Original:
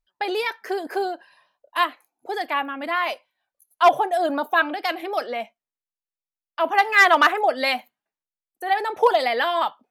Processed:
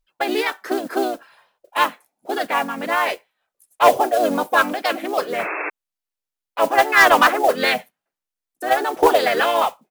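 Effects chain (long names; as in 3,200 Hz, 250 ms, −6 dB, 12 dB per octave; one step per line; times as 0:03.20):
dynamic equaliser 6,300 Hz, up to +5 dB, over −54 dBFS, Q 6.3
pitch-shifted copies added −7 semitones −9 dB, −3 semitones −3 dB
noise that follows the level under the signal 20 dB
in parallel at −9.5 dB: wave folding −10 dBFS
on the sum: sound drawn into the spectrogram noise, 0:05.38–0:05.70, 290–2,700 Hz −25 dBFS
level −1 dB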